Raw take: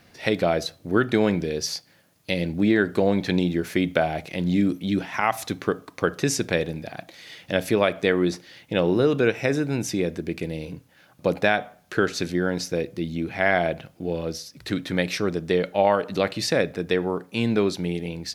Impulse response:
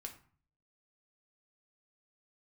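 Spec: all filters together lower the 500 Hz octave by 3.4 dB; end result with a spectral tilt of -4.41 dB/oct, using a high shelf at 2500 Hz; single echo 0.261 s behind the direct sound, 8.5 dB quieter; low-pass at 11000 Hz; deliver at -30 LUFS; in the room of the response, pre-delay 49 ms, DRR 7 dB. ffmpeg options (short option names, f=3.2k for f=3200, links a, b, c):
-filter_complex "[0:a]lowpass=11k,equalizer=f=500:t=o:g=-4.5,highshelf=f=2.5k:g=4.5,aecho=1:1:261:0.376,asplit=2[a][b];[1:a]atrim=start_sample=2205,adelay=49[c];[b][c]afir=irnorm=-1:irlink=0,volume=-3dB[d];[a][d]amix=inputs=2:normalize=0,volume=-6dB"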